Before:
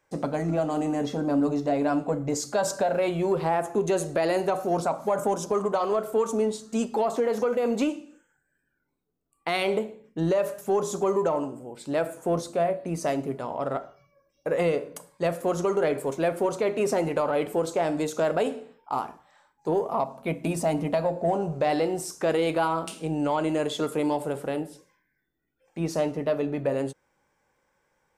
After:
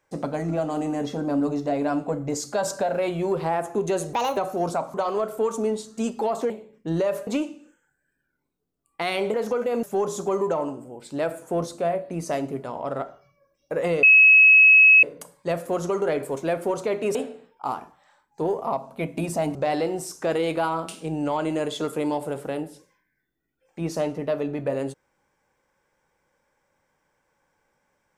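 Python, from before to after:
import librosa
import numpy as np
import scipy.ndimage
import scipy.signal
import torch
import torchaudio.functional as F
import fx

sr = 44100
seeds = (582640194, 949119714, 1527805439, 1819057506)

y = fx.edit(x, sr, fx.speed_span(start_s=4.13, length_s=0.35, speed=1.46),
    fx.cut(start_s=5.05, length_s=0.64),
    fx.swap(start_s=7.25, length_s=0.49, other_s=9.81, other_length_s=0.77),
    fx.insert_tone(at_s=14.78, length_s=1.0, hz=2570.0, db=-9.5),
    fx.cut(start_s=16.9, length_s=1.52),
    fx.cut(start_s=20.82, length_s=0.72), tone=tone)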